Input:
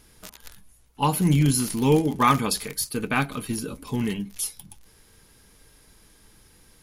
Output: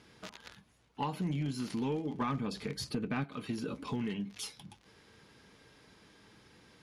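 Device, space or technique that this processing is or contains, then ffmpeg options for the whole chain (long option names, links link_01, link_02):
AM radio: -filter_complex "[0:a]asettb=1/sr,asplit=3[link_01][link_02][link_03];[link_01]atrim=end=2.214[link_04];[link_02]atrim=start=2.21:end=3.24,asetpts=PTS-STARTPTS,afade=type=in:duration=0.004:curve=qsin,afade=type=out:start_time=1.026:duration=0.004:curve=qsin,lowshelf=frequency=400:gain=11.5[link_05];[link_03]atrim=start=3.236[link_06];[link_04][link_05]acrossfade=duration=0.004:curve1=hsin:curve2=qsin[link_07];[link_07][link_06]acrossfade=duration=0.004:curve1=qsin:curve2=hsin,highpass=120,lowpass=4200,acompressor=threshold=-32dB:ratio=5,asoftclip=type=tanh:threshold=-24dB"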